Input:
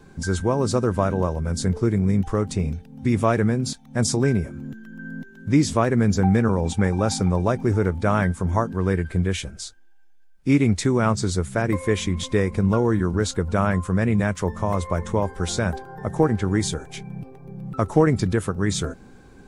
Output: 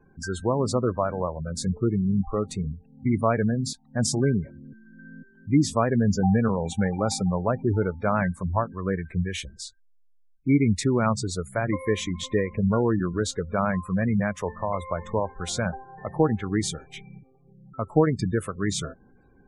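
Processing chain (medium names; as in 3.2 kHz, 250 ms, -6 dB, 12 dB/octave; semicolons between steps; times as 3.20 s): spectral noise reduction 8 dB; spectral gate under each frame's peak -25 dB strong; 17.19–18.19 s: upward expansion 1.5:1, over -26 dBFS; trim -2 dB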